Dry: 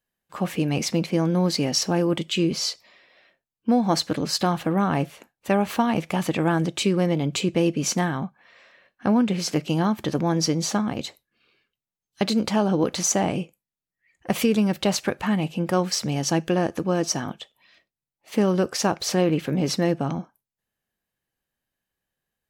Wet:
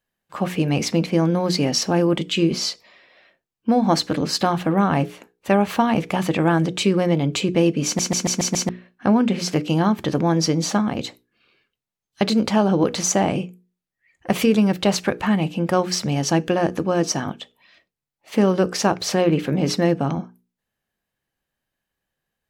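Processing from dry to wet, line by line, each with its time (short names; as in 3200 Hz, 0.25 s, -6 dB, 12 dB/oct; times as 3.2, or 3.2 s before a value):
7.85 stutter in place 0.14 s, 6 plays
whole clip: high shelf 5800 Hz -5.5 dB; notches 60/120/180/240/300/360/420/480 Hz; gain +4 dB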